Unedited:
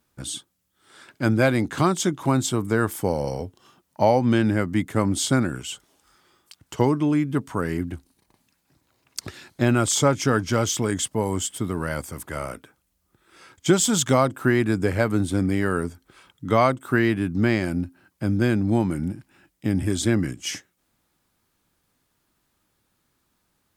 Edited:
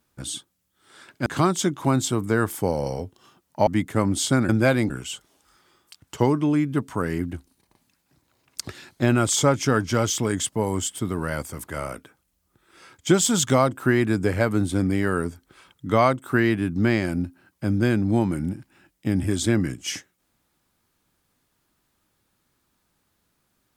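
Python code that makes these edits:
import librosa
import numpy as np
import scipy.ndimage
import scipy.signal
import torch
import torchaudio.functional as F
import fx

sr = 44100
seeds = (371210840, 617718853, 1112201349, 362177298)

y = fx.edit(x, sr, fx.move(start_s=1.26, length_s=0.41, to_s=5.49),
    fx.cut(start_s=4.08, length_s=0.59), tone=tone)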